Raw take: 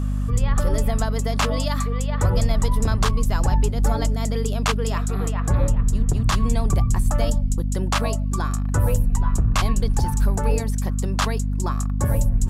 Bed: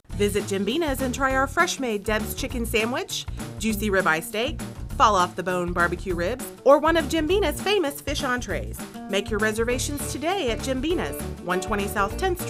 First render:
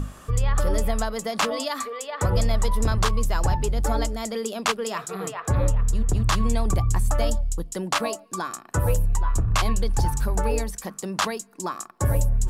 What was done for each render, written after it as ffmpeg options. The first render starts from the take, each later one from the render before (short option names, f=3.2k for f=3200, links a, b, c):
-af "bandreject=f=50:t=h:w=6,bandreject=f=100:t=h:w=6,bandreject=f=150:t=h:w=6,bandreject=f=200:t=h:w=6,bandreject=f=250:t=h:w=6"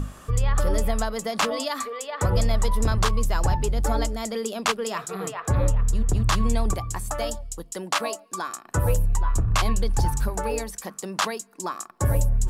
-filter_complex "[0:a]asettb=1/sr,asplit=3[a][b][c];[a]atrim=end=6.734[d];[b]atrim=start=6.73:end=8.65,asetpts=PTS-STARTPTS,afade=t=in:d=0.004:c=qsin,afade=t=out:st=1.916:d=0.004:c=qsin,lowshelf=f=220:g=-12[e];[c]atrim=start=8.646[f];[d][e]acrossfade=d=0.004:c1=hsin:c2=qsin[g];[g][f]acrossfade=d=0.004:c1=qsin:c2=hsin,asettb=1/sr,asplit=3[h][i][j];[h]atrim=end=10.294[k];[i]atrim=start=10.29:end=11.9,asetpts=PTS-STARTPTS,afade=t=in:d=0.004:c=qsin,afade=t=out:st=1.606:d=0.004:c=qsin,lowshelf=f=160:g=-9.5[l];[j]atrim=start=11.896[m];[k][l]acrossfade=d=0.004:c1=hsin:c2=qsin[n];[n][m]acrossfade=d=0.004:c1=qsin:c2=hsin"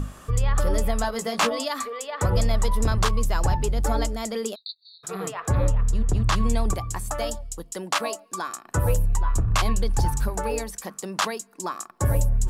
-filter_complex "[0:a]asettb=1/sr,asplit=3[a][b][c];[a]atrim=end=1.024[d];[b]atrim=start=1.02:end=1.49,asetpts=PTS-STARTPTS,afade=t=in:d=0.004:c=qsin,afade=t=out:st=0.466:d=0.004:c=qsin,asplit=2[e][f];[f]adelay=17,volume=-4dB[g];[e][g]amix=inputs=2:normalize=0,atrim=end_sample=20727[h];[c]atrim=start=1.486[i];[d][h]acrossfade=d=0.004:c1=hsin:c2=qsin[j];[j][i]acrossfade=d=0.004:c1=qsin:c2=hsin,asplit=3[k][l][m];[k]afade=t=out:st=4.54:d=0.02[n];[l]asuperpass=centerf=4100:order=20:qfactor=4.2,afade=t=in:st=4.54:d=0.02,afade=t=out:st=5.03:d=0.02[o];[m]afade=t=in:st=5.03:d=0.02[p];[n][o][p]amix=inputs=3:normalize=0,asettb=1/sr,asplit=3[q][r][s];[q]atrim=end=5.684[t];[r]atrim=start=5.68:end=6.36,asetpts=PTS-STARTPTS,afade=t=in:d=0.004:c=qsin,afade=t=out:st=0.676:d=0.004:c=qsin,highshelf=f=9.4k:g=-9.5[u];[s]atrim=start=6.356[v];[t][u]acrossfade=d=0.004:c1=hsin:c2=qsin[w];[w][v]acrossfade=d=0.004:c1=qsin:c2=hsin"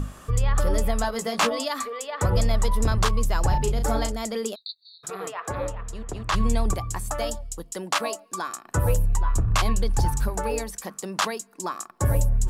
-filter_complex "[0:a]asettb=1/sr,asplit=3[a][b][c];[a]atrim=end=3.504[d];[b]atrim=start=3.5:end=4.12,asetpts=PTS-STARTPTS,afade=t=in:d=0.004:c=qsin,afade=t=out:st=0.616:d=0.004:c=qsin,asplit=2[e][f];[f]adelay=36,volume=-6.5dB[g];[e][g]amix=inputs=2:normalize=0,atrim=end_sample=27342[h];[c]atrim=start=4.116[i];[d][h]acrossfade=d=0.004:c1=hsin:c2=qsin[j];[j][i]acrossfade=d=0.004:c1=qsin:c2=hsin,asettb=1/sr,asplit=3[k][l][m];[k]atrim=end=5.104[n];[l]atrim=start=5.1:end=6.34,asetpts=PTS-STARTPTS,afade=t=in:d=0.004:c=qsin,afade=t=out:st=1.236:d=0.004:c=qsin,bass=f=250:g=-14,treble=f=4k:g=-4[o];[m]atrim=start=6.336[p];[n][o]acrossfade=d=0.004:c1=hsin:c2=qsin[q];[q][p]acrossfade=d=0.004:c1=qsin:c2=hsin"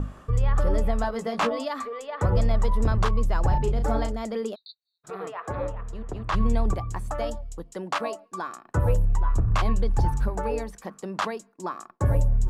-af "lowpass=f=1.5k:p=1,agate=range=-33dB:threshold=-43dB:ratio=3:detection=peak"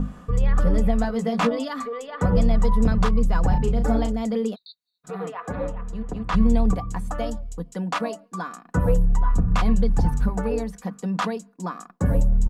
-af "equalizer=f=170:t=o:w=0.67:g=12,aecho=1:1:4.1:0.55"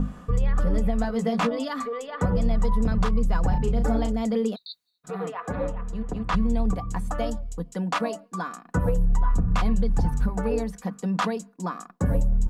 -af "areverse,acompressor=mode=upward:threshold=-32dB:ratio=2.5,areverse,alimiter=limit=-14dB:level=0:latency=1:release=219"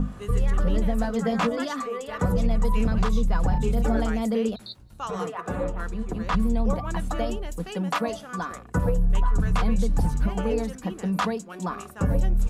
-filter_complex "[1:a]volume=-16.5dB[a];[0:a][a]amix=inputs=2:normalize=0"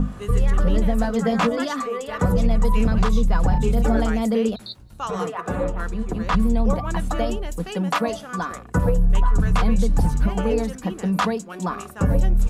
-af "volume=4dB"